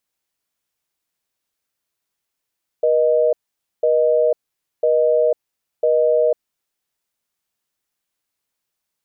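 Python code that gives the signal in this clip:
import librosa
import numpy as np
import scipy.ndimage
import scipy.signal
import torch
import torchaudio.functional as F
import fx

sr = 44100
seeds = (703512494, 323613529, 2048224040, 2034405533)

y = fx.call_progress(sr, length_s=3.85, kind='busy tone', level_db=-15.5)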